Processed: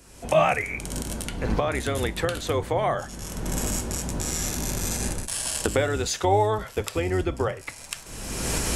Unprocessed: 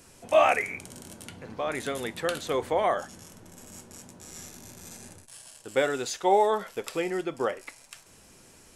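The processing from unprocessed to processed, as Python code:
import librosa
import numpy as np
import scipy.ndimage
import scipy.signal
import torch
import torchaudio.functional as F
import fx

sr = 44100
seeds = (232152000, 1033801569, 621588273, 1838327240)

y = fx.octave_divider(x, sr, octaves=2, level_db=3.0)
y = fx.recorder_agc(y, sr, target_db=-16.0, rise_db_per_s=33.0, max_gain_db=30)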